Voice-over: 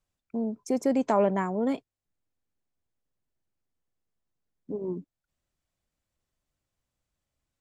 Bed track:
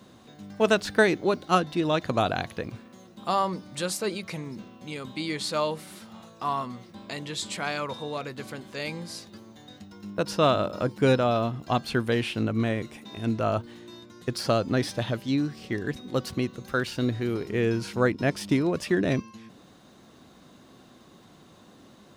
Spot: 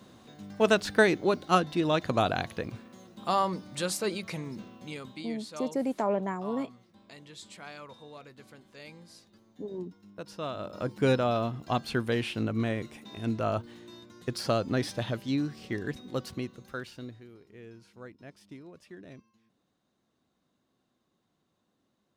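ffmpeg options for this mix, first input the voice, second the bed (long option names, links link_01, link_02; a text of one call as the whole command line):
ffmpeg -i stem1.wav -i stem2.wav -filter_complex "[0:a]adelay=4900,volume=-5dB[link_01];[1:a]volume=9.5dB,afade=type=out:start_time=4.77:duration=0.56:silence=0.223872,afade=type=in:start_time=10.53:duration=0.45:silence=0.281838,afade=type=out:start_time=15.81:duration=1.47:silence=0.1[link_02];[link_01][link_02]amix=inputs=2:normalize=0" out.wav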